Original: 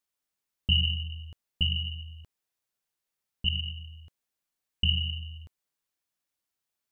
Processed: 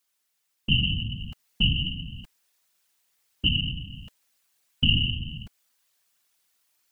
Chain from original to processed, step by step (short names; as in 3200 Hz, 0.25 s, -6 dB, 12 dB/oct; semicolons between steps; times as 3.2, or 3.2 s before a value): whisperiser; vocal rider 0.5 s; mismatched tape noise reduction encoder only; gain +5.5 dB